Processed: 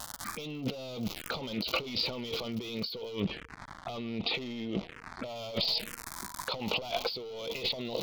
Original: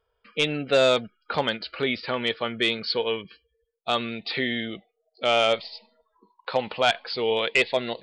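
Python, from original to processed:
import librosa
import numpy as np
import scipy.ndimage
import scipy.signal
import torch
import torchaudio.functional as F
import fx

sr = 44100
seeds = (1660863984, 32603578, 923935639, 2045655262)

y = fx.dmg_crackle(x, sr, seeds[0], per_s=200.0, level_db=-34.0)
y = fx.lowpass(y, sr, hz=2500.0, slope=12, at=(3.19, 5.34), fade=0.02)
y = np.clip(y, -10.0 ** (-27.0 / 20.0), 10.0 ** (-27.0 / 20.0))
y = fx.env_phaser(y, sr, low_hz=380.0, high_hz=1700.0, full_db=-34.0)
y = fx.over_compress(y, sr, threshold_db=-43.0, ratio=-1.0)
y = fx.doppler_dist(y, sr, depth_ms=0.21)
y = y * librosa.db_to_amplitude(7.0)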